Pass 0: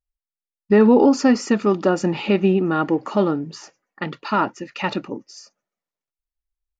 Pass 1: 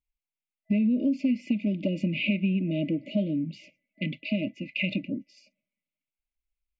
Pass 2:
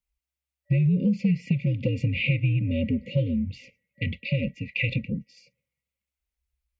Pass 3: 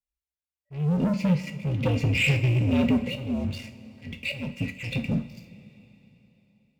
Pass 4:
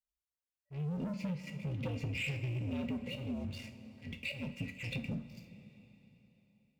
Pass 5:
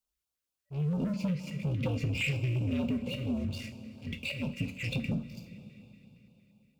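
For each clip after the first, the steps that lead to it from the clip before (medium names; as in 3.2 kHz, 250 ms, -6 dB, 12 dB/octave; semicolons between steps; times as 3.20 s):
FFT band-reject 640–2000 Hz; FFT filter 130 Hz 0 dB, 190 Hz +5 dB, 280 Hz +4 dB, 440 Hz -19 dB, 640 Hz +3 dB, 2.6 kHz +7 dB, 6.2 kHz -21 dB, 9 kHz -15 dB; compression 4:1, threshold -22 dBFS, peak gain reduction 12 dB; trim -2 dB
frequency shift -68 Hz; trim +2.5 dB
waveshaping leveller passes 3; slow attack 311 ms; two-slope reverb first 0.39 s, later 3.7 s, from -18 dB, DRR 6 dB; trim -5 dB
compression 5:1, threshold -29 dBFS, peak gain reduction 10.5 dB; trim -6.5 dB
LFO notch square 4.3 Hz 840–1900 Hz; trim +6.5 dB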